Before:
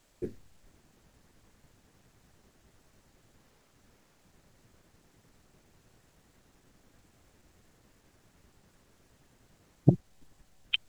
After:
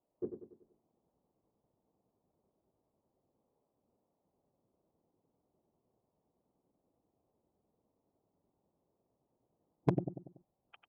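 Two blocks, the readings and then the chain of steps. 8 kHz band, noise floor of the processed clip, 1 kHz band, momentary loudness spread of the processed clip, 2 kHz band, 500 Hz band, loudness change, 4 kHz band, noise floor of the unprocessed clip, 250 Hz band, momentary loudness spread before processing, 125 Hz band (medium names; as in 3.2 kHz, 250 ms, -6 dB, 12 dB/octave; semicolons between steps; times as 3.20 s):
no reading, -84 dBFS, +4.0 dB, 18 LU, -17.0 dB, -1.5 dB, -7.5 dB, -30.5 dB, -67 dBFS, -7.0 dB, 15 LU, -9.5 dB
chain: local Wiener filter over 25 samples; spectral noise reduction 10 dB; low-pass 1 kHz 24 dB/octave; feedback delay 95 ms, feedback 46%, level -8 dB; one-sided clip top -15 dBFS; high-pass 500 Hz 6 dB/octave; trim +2.5 dB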